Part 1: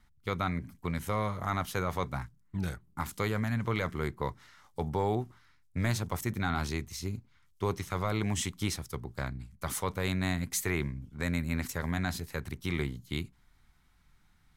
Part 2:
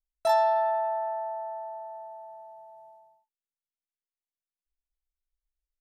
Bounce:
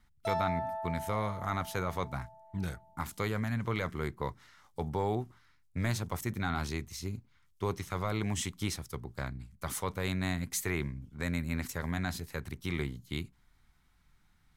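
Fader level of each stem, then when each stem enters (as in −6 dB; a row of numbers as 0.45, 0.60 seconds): −2.0, −10.5 decibels; 0.00, 0.00 seconds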